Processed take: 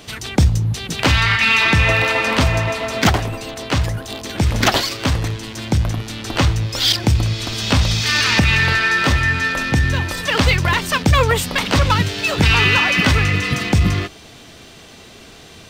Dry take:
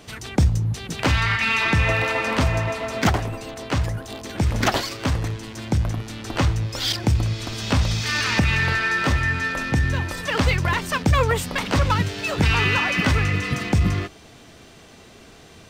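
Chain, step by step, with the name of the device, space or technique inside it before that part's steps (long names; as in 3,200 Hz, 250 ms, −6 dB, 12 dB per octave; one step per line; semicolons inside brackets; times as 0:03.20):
presence and air boost (parametric band 3,600 Hz +4.5 dB 1.3 octaves; high-shelf EQ 11,000 Hz +5.5 dB)
level +4 dB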